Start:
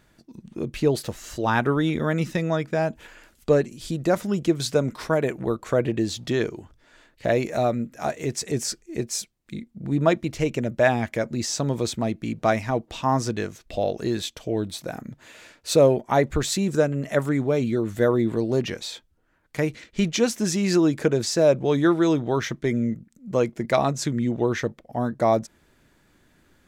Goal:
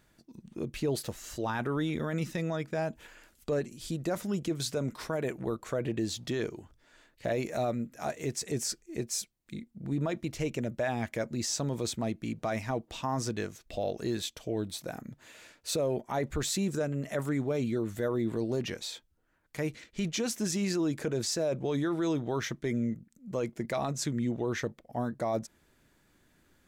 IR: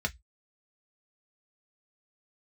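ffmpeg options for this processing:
-af "highshelf=f=6.7k:g=5,alimiter=limit=-16dB:level=0:latency=1:release=12,volume=-6.5dB"

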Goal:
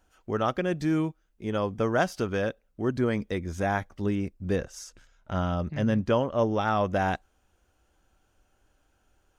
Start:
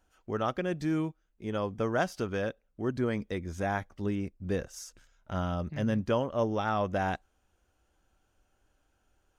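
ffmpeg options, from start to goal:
-filter_complex "[0:a]asettb=1/sr,asplit=3[a][b][c];[a]atrim=end=4.564[d];[b]atrim=start=4.56:end=6.61,asetpts=PTS-STARTPTS,afade=t=in:d=0.004:c=qsin,afade=t=out:st=2.046:d=0.004:c=qsin,highshelf=f=9.4k:g=-8.5[e];[c]atrim=start=6.606[f];[d][e]acrossfade=d=0.004:c1=hsin:c2=qsin[g];[g][f]acrossfade=d=0.004:c1=qsin:c2=hsin,volume=4dB"

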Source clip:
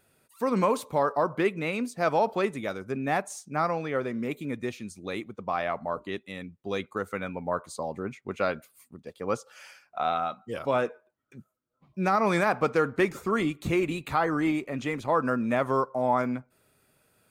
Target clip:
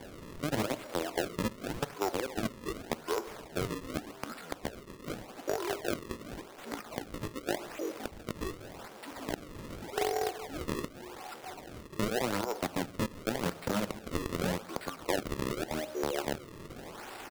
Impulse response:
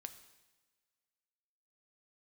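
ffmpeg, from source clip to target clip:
-filter_complex "[0:a]aeval=exprs='val(0)+0.5*0.0237*sgn(val(0))':c=same,acrossover=split=510|4400[a][b][c];[a]acrusher=bits=3:mix=0:aa=0.000001[d];[c]aeval=exprs='(mod(35.5*val(0)+1,2)-1)/35.5':c=same[e];[d][b][e]amix=inputs=3:normalize=0,asetrate=25476,aresample=44100,atempo=1.73107,alimiter=limit=-21dB:level=0:latency=1:release=319,aeval=exprs='0.0891*(cos(1*acos(clip(val(0)/0.0891,-1,1)))-cos(1*PI/2))+0.0282*(cos(3*acos(clip(val(0)/0.0891,-1,1)))-cos(3*PI/2))+0.00708*(cos(5*acos(clip(val(0)/0.0891,-1,1)))-cos(5*PI/2))':c=same,acrossover=split=160|1700[f][g][h];[f]acompressor=threshold=-48dB:ratio=4[i];[g]acompressor=threshold=-32dB:ratio=4[j];[h]acompressor=threshold=-49dB:ratio=4[k];[i][j][k]amix=inputs=3:normalize=0,asplit=2[l][m];[m]equalizer=f=490:t=o:w=0.77:g=4[n];[1:a]atrim=start_sample=2205[o];[n][o]afir=irnorm=-1:irlink=0,volume=8dB[p];[l][p]amix=inputs=2:normalize=0,acrusher=samples=33:mix=1:aa=0.000001:lfo=1:lforange=52.8:lforate=0.86,lowshelf=f=210:g=-3,volume=-3dB"

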